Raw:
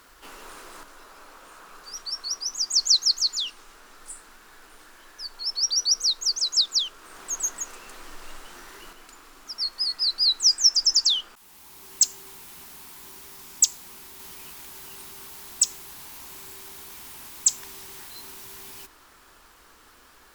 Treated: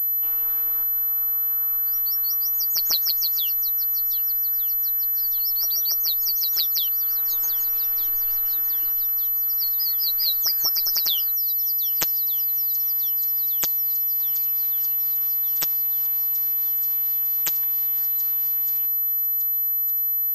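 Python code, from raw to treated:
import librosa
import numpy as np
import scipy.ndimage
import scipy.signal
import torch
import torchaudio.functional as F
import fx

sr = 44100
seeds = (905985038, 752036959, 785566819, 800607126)

y = fx.echo_swing(x, sr, ms=1207, ratio=1.5, feedback_pct=62, wet_db=-15.5)
y = fx.robotise(y, sr, hz=162.0)
y = fx.pwm(y, sr, carrier_hz=12000.0)
y = F.gain(torch.from_numpy(y), -1.0).numpy()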